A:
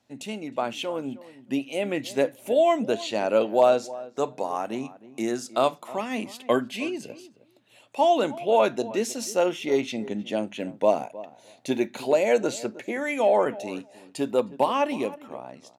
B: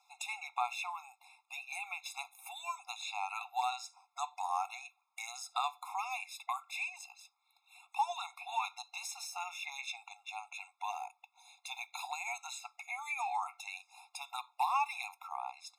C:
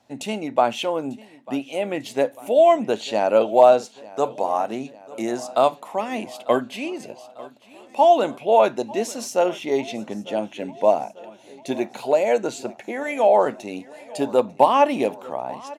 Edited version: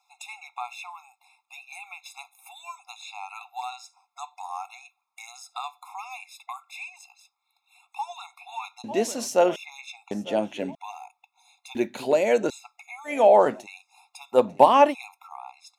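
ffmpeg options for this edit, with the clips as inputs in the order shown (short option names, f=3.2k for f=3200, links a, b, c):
-filter_complex "[2:a]asplit=4[a][b][c][d];[1:a]asplit=6[e][f][g][h][i][j];[e]atrim=end=8.842[k];[a]atrim=start=8.838:end=9.562[l];[f]atrim=start=9.558:end=10.112[m];[b]atrim=start=10.108:end=10.752[n];[g]atrim=start=10.748:end=11.752[o];[0:a]atrim=start=11.748:end=12.502[p];[h]atrim=start=12.498:end=13.14[q];[c]atrim=start=13.04:end=13.67[r];[i]atrim=start=13.57:end=14.38[s];[d]atrim=start=14.32:end=14.95[t];[j]atrim=start=14.89[u];[k][l]acrossfade=d=0.004:c1=hsin:c2=hsin[v];[v][m]acrossfade=d=0.004:c1=hsin:c2=hsin[w];[w][n]acrossfade=d=0.004:c1=hsin:c2=hsin[x];[x][o]acrossfade=d=0.004:c1=hsin:c2=hsin[y];[y][p]acrossfade=d=0.004:c1=hsin:c2=hsin[z];[z][q]acrossfade=d=0.004:c1=hsin:c2=hsin[aa];[aa][r]acrossfade=d=0.1:c1=tri:c2=tri[ab];[ab][s]acrossfade=d=0.1:c1=tri:c2=tri[ac];[ac][t]acrossfade=d=0.06:c1=tri:c2=tri[ad];[ad][u]acrossfade=d=0.06:c1=tri:c2=tri"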